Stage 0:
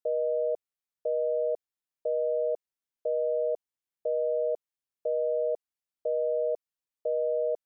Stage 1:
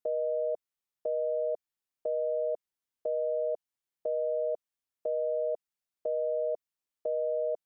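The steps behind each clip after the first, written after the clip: dynamic EQ 470 Hz, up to -4 dB, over -42 dBFS, Q 2.4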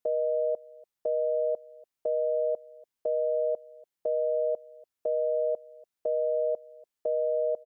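echo 0.29 s -22.5 dB; gain +3 dB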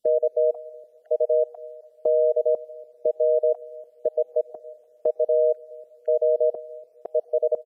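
random spectral dropouts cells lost 34%; on a send at -23 dB: reverb RT60 3.7 s, pre-delay 97 ms; on the sum: downsampling 32000 Hz; gain +8 dB

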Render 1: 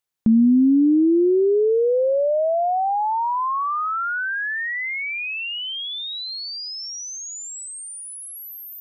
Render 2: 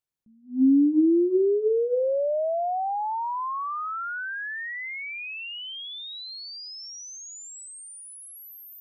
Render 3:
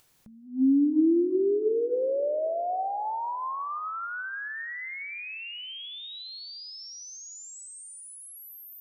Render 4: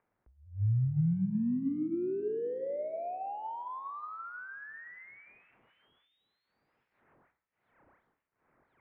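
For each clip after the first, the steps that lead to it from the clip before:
low shelf 360 Hz +9.5 dB; notches 60/120/180/240/300/360/420/480 Hz; attack slew limiter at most 200 dB/s; gain -8 dB
split-band echo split 600 Hz, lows 0.267 s, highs 0.168 s, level -15 dB; on a send at -17.5 dB: reverb RT60 0.50 s, pre-delay 5 ms; on the sum: upward compressor, threshold -39 dBFS; gain -3 dB
median filter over 15 samples; de-hum 112.9 Hz, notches 33; mistuned SSB -160 Hz 220–2500 Hz; gain -6 dB

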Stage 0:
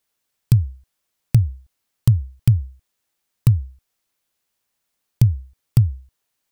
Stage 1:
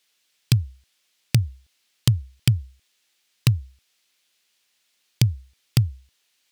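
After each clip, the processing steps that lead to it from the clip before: weighting filter D; gain +1.5 dB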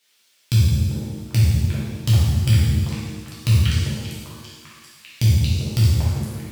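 delay with a stepping band-pass 0.395 s, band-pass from 540 Hz, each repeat 0.7 oct, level 0 dB; transient shaper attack -7 dB, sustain +7 dB; shimmer reverb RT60 1.4 s, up +7 st, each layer -8 dB, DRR -8.5 dB

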